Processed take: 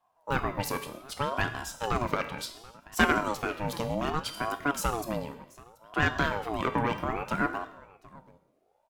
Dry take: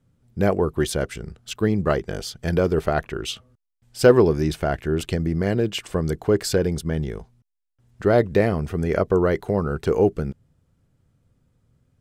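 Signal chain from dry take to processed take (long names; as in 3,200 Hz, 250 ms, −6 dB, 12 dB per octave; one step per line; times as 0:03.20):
parametric band 270 Hz −8 dB 0.79 octaves
tuned comb filter 290 Hz, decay 0.81 s, mix 80%
reverb whose tail is shaped and stops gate 440 ms falling, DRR 9.5 dB
harmonic generator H 2 −7 dB, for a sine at −17.5 dBFS
single-tap delay 988 ms −22 dB
wrong playback speed 33 rpm record played at 45 rpm
ring modulator whose carrier an LFO sweeps 620 Hz, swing 45%, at 0.66 Hz
level +8.5 dB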